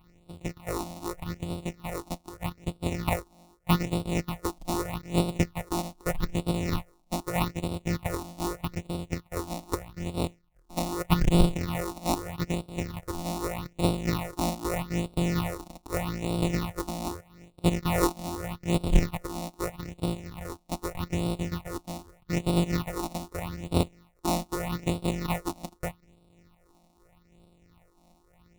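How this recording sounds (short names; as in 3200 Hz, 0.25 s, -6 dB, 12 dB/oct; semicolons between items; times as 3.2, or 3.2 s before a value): a buzz of ramps at a fixed pitch in blocks of 256 samples; tremolo triangle 3 Hz, depth 40%; aliases and images of a low sample rate 1600 Hz, jitter 0%; phasing stages 6, 0.81 Hz, lowest notch 110–1800 Hz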